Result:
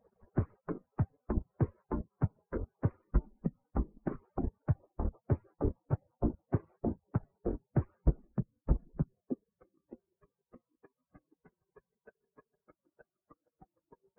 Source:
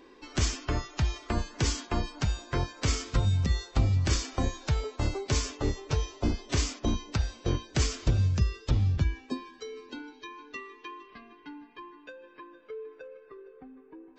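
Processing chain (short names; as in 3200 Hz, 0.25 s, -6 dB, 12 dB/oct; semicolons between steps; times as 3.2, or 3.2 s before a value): median-filter separation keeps percussive; transient shaper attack +5 dB, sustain -8 dB; Gaussian blur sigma 7.5 samples; gain -4.5 dB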